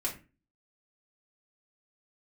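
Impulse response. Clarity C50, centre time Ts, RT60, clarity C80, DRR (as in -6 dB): 10.5 dB, 17 ms, 0.30 s, 16.0 dB, -4.5 dB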